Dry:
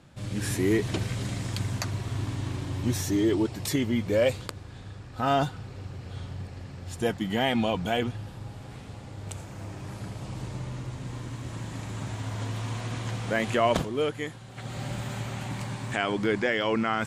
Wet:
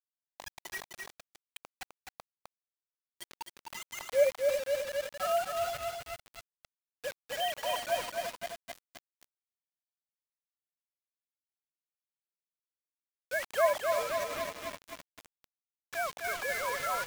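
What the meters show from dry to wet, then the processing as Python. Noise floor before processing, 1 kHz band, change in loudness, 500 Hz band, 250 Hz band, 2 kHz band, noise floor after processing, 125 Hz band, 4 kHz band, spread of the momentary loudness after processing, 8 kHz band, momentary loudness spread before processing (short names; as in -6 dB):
-44 dBFS, -4.0 dB, -3.5 dB, -3.5 dB, -29.0 dB, -4.5 dB, under -85 dBFS, -31.0 dB, -6.0 dB, 21 LU, -4.5 dB, 15 LU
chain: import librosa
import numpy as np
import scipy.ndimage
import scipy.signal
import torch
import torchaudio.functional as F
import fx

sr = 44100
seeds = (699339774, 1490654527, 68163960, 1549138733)

p1 = fx.sine_speech(x, sr)
p2 = scipy.signal.sosfilt(scipy.signal.butter(8, 590.0, 'highpass', fs=sr, output='sos'), p1)
p3 = fx.notch(p2, sr, hz=1800.0, q=15.0)
p4 = p3 + fx.echo_feedback(p3, sr, ms=343, feedback_pct=32, wet_db=-10, dry=0)
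p5 = fx.quant_dither(p4, sr, seeds[0], bits=6, dither='none')
p6 = fx.echo_crushed(p5, sr, ms=257, feedback_pct=80, bits=6, wet_db=-4)
y = p6 * 10.0 ** (-3.5 / 20.0)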